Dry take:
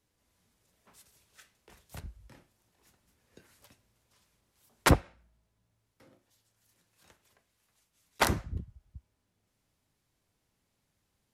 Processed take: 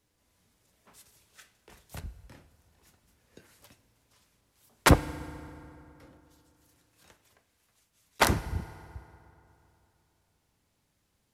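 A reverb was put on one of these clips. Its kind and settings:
feedback delay network reverb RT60 3 s, high-frequency decay 0.6×, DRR 15.5 dB
level +3 dB

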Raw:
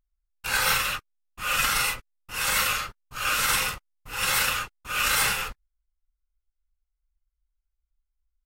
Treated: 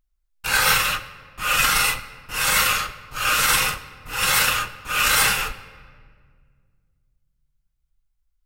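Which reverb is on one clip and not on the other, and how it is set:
rectangular room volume 3,200 cubic metres, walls mixed, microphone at 0.54 metres
level +5 dB

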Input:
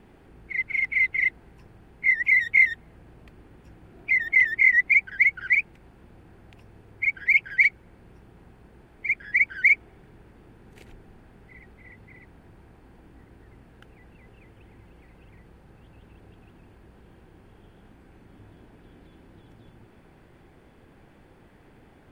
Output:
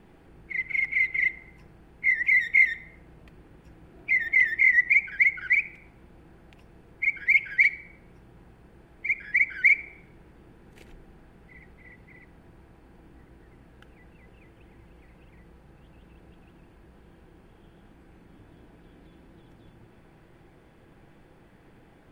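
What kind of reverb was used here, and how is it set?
rectangular room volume 2,800 cubic metres, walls furnished, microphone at 0.69 metres
level −1.5 dB

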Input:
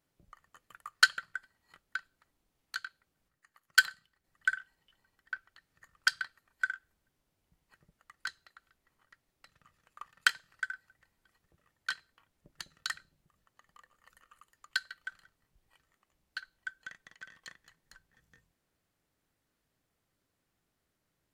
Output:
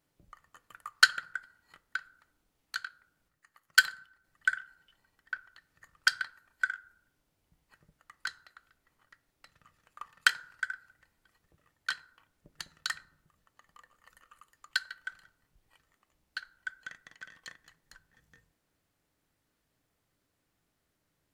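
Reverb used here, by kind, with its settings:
feedback delay network reverb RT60 0.68 s, high-frequency decay 0.3×, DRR 15 dB
level +2 dB

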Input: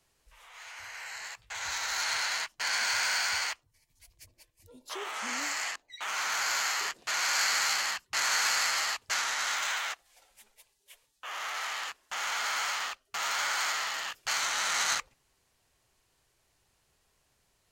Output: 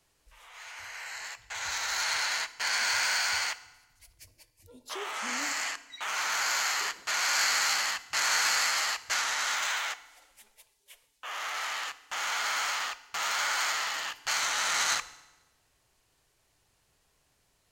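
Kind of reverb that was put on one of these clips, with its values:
feedback delay network reverb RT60 1.1 s, low-frequency decay 1.45×, high-frequency decay 0.9×, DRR 14 dB
level +1 dB

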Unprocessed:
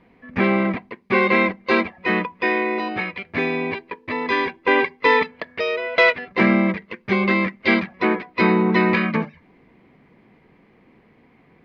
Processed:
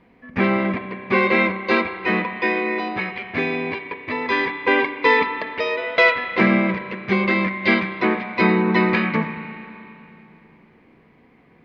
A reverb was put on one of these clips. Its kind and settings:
spring reverb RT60 2.8 s, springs 31/37 ms, chirp 25 ms, DRR 7.5 dB

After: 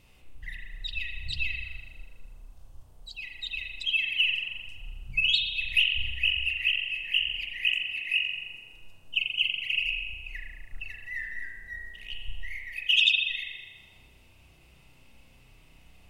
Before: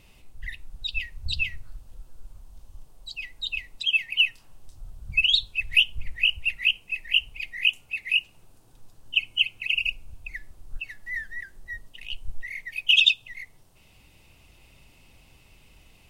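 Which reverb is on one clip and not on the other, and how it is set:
spring reverb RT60 1.3 s, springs 32 ms, chirp 80 ms, DRR −0.5 dB
level −5 dB

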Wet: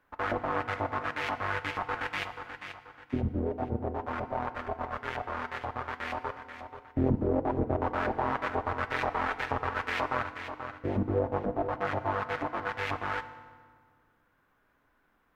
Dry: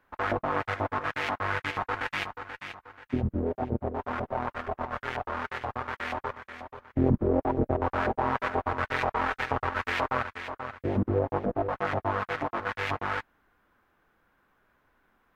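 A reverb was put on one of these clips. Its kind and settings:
feedback delay network reverb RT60 1.7 s, low-frequency decay 1.4×, high-frequency decay 0.75×, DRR 11 dB
level −2.5 dB

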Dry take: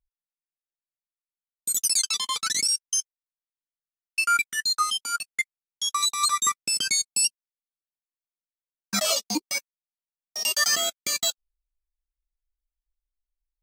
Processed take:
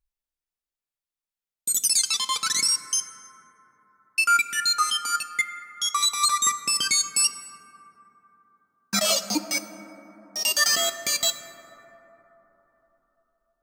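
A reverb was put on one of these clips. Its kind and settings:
dense smooth reverb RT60 4.1 s, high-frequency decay 0.25×, DRR 9.5 dB
level +1.5 dB

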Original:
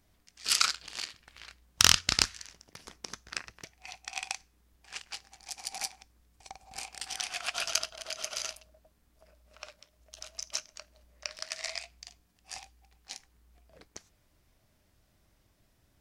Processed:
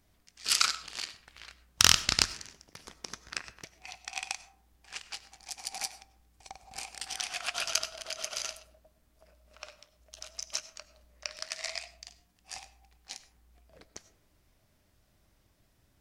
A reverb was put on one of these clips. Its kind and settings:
comb and all-pass reverb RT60 0.7 s, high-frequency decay 0.3×, pre-delay 55 ms, DRR 15.5 dB

